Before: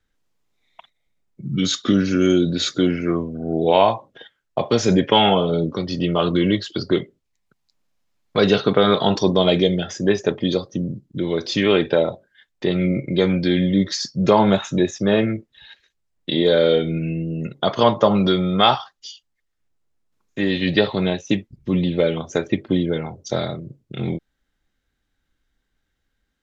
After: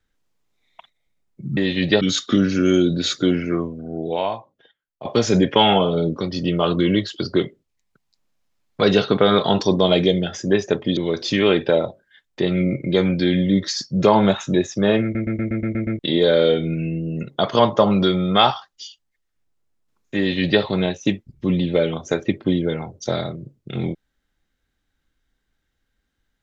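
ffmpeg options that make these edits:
-filter_complex "[0:a]asplit=13[s0][s1][s2][s3][s4][s5][s6][s7][s8][s9][s10][s11][s12];[s0]atrim=end=1.572[s13];[s1]atrim=start=20.418:end=20.862[s14];[s2]atrim=start=1.568:end=4.61,asetpts=PTS-STARTPTS,afade=t=out:st=1.422:d=1.62:c=qua:silence=0.16788[s15];[s3]atrim=start=4.61:end=10.532,asetpts=PTS-STARTPTS,afade=t=in:d=0.004:c=hsin:silence=0.16788[s16];[s4]atrim=start=11.208:end=15.392[s17];[s5]atrim=start=15.268:end=15.392[s18];[s6]atrim=start=15.268:end=15.392[s19];[s7]atrim=start=15.268:end=15.392[s20];[s8]atrim=start=15.268:end=15.392[s21];[s9]atrim=start=15.268:end=15.392[s22];[s10]atrim=start=15.268:end=15.392[s23];[s11]atrim=start=15.268:end=15.392[s24];[s12]atrim=start=16.228[s25];[s13][s14]acrossfade=d=0.004:c1=hsin:c2=hsin[s26];[s15][s16]concat=n=2:v=0:a=1[s27];[s26][s27]acrossfade=d=0.004:c1=hsin:c2=hsin[s28];[s28][s17]acrossfade=d=0.004:c1=hsin:c2=hsin[s29];[s29][s18]acrossfade=d=0.004:c1=hsin:c2=hsin[s30];[s30][s19]acrossfade=d=0.004:c1=hsin:c2=hsin[s31];[s31][s20]acrossfade=d=0.004:c1=hsin:c2=hsin[s32];[s32][s21]acrossfade=d=0.004:c1=hsin:c2=hsin[s33];[s33][s22]acrossfade=d=0.004:c1=hsin:c2=hsin[s34];[s34][s23]acrossfade=d=0.004:c1=hsin:c2=hsin[s35];[s35][s24]acrossfade=d=0.004:c1=hsin:c2=hsin[s36];[s36][s25]acrossfade=d=0.004:c1=hsin:c2=hsin"

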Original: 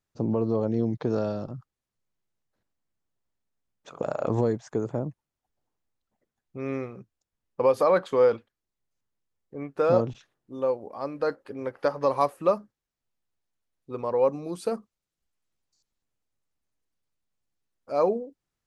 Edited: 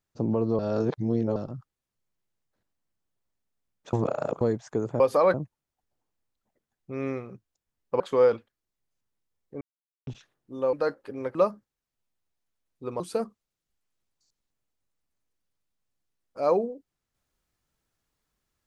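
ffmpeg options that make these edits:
-filter_complex "[0:a]asplit=13[s0][s1][s2][s3][s4][s5][s6][s7][s8][s9][s10][s11][s12];[s0]atrim=end=0.592[s13];[s1]atrim=start=0.588:end=1.362,asetpts=PTS-STARTPTS,areverse[s14];[s2]atrim=start=1.358:end=3.932[s15];[s3]atrim=start=3.928:end=4.412,asetpts=PTS-STARTPTS,areverse[s16];[s4]atrim=start=4.408:end=5.002[s17];[s5]atrim=start=7.658:end=8.002[s18];[s6]atrim=start=4.998:end=7.662[s19];[s7]atrim=start=7.998:end=9.61,asetpts=PTS-STARTPTS,afade=t=out:st=1.608:d=0.004:c=hsin[s20];[s8]atrim=start=9.61:end=10.07,asetpts=PTS-STARTPTS,volume=0[s21];[s9]atrim=start=10.07:end=10.732,asetpts=PTS-STARTPTS,afade=t=in:d=0.004:c=hsin[s22];[s10]atrim=start=11.138:end=11.762[s23];[s11]atrim=start=12.418:end=14.072[s24];[s12]atrim=start=14.518[s25];[s13][s14]acrossfade=d=0.004:c1=hsin:c2=hsin[s26];[s26][s15]acrossfade=d=0.004:c1=hsin:c2=hsin[s27];[s27][s16]acrossfade=d=0.004:c1=hsin:c2=hsin[s28];[s28][s17]acrossfade=d=0.004:c1=hsin:c2=hsin[s29];[s29][s18]acrossfade=d=0.004:c1=hsin:c2=hsin[s30];[s30][s19]acrossfade=d=0.004:c1=hsin:c2=hsin[s31];[s20][s21][s22]concat=n=3:v=0:a=1[s32];[s31][s32]acrossfade=d=0.004:c1=hsin:c2=hsin[s33];[s33][s23]acrossfade=d=0.004:c1=hsin:c2=hsin[s34];[s34][s24]acrossfade=d=0.004:c1=hsin:c2=hsin[s35];[s35][s25]acrossfade=d=0.004:c1=hsin:c2=hsin"

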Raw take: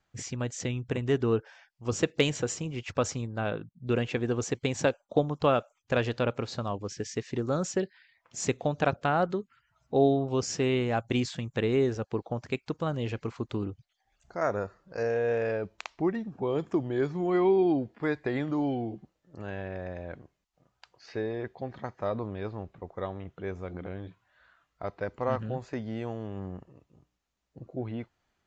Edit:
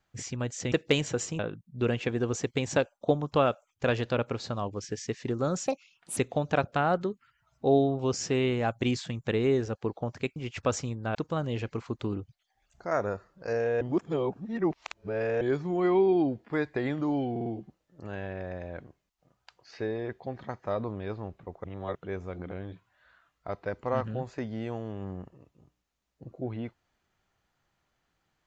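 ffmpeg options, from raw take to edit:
-filter_complex "[0:a]asplit=14[s0][s1][s2][s3][s4][s5][s6][s7][s8][s9][s10][s11][s12][s13];[s0]atrim=end=0.722[s14];[s1]atrim=start=2.008:end=2.682[s15];[s2]atrim=start=3.468:end=7.754[s16];[s3]atrim=start=7.75:end=8.46,asetpts=PTS-STARTPTS,asetrate=62622,aresample=44100[s17];[s4]atrim=start=8.456:end=12.652[s18];[s5]atrim=start=2.678:end=3.472[s19];[s6]atrim=start=12.648:end=15.312[s20];[s7]atrim=start=15.308:end=16.912,asetpts=PTS-STARTPTS,areverse[s21];[s8]atrim=start=16.908:end=18.862[s22];[s9]atrim=start=18.808:end=18.862[s23];[s10]atrim=start=18.808:end=18.862[s24];[s11]atrim=start=18.808:end=22.992[s25];[s12]atrim=start=22.988:end=23.302,asetpts=PTS-STARTPTS,areverse[s26];[s13]atrim=start=23.298[s27];[s14][s15]acrossfade=d=0.004:c1=hsin:c2=hsin[s28];[s28][s16]acrossfade=d=0.004:c1=hsin:c2=hsin[s29];[s29][s17]acrossfade=d=0.004:c1=hsin:c2=hsin[s30];[s30][s18]acrossfade=d=0.004:c1=hsin:c2=hsin[s31];[s31][s19]acrossfade=d=0.004:c1=hsin:c2=hsin[s32];[s32][s20]acrossfade=d=0.004:c1=hsin:c2=hsin[s33];[s33][s21]acrossfade=d=0.004:c1=hsin:c2=hsin[s34];[s34][s22]acrossfade=d=0.004:c1=hsin:c2=hsin[s35];[s35][s23]acrossfade=d=0.004:c1=hsin:c2=hsin[s36];[s36][s24]acrossfade=d=0.004:c1=hsin:c2=hsin[s37];[s37][s25]acrossfade=d=0.004:c1=hsin:c2=hsin[s38];[s38][s26]acrossfade=d=0.004:c1=hsin:c2=hsin[s39];[s39][s27]acrossfade=d=0.004:c1=hsin:c2=hsin"

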